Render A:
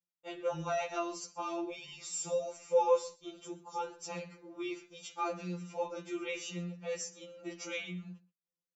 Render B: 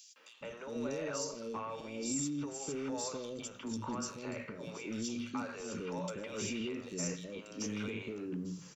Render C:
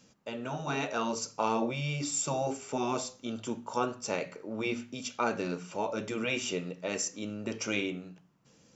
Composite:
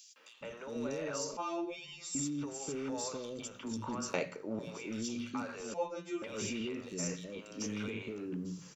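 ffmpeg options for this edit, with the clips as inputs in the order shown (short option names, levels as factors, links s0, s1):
-filter_complex "[0:a]asplit=2[s0][s1];[1:a]asplit=4[s2][s3][s4][s5];[s2]atrim=end=1.372[s6];[s0]atrim=start=1.368:end=2.152[s7];[s3]atrim=start=2.148:end=4.142[s8];[2:a]atrim=start=4.138:end=4.592[s9];[s4]atrim=start=4.588:end=5.742[s10];[s1]atrim=start=5.738:end=6.222[s11];[s5]atrim=start=6.218[s12];[s6][s7]acrossfade=d=0.004:c1=hsin:c2=hsin[s13];[s13][s8]acrossfade=d=0.004:c1=hsin:c2=hsin[s14];[s14][s9]acrossfade=d=0.004:c1=hsin:c2=hsin[s15];[s15][s10]acrossfade=d=0.004:c1=hsin:c2=hsin[s16];[s16][s11]acrossfade=d=0.004:c1=hsin:c2=hsin[s17];[s17][s12]acrossfade=d=0.004:c1=hsin:c2=hsin"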